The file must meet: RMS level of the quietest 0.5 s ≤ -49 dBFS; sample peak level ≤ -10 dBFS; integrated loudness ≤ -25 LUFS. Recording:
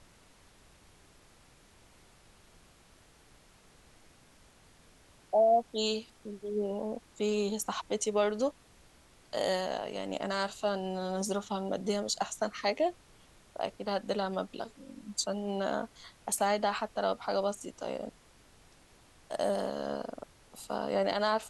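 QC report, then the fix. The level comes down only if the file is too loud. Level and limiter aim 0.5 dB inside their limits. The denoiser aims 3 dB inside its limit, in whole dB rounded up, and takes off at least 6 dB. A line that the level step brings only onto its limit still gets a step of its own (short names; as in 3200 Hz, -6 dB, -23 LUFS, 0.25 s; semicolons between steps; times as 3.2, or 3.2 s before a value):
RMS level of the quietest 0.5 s -60 dBFS: OK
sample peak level -16.5 dBFS: OK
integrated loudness -33.0 LUFS: OK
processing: none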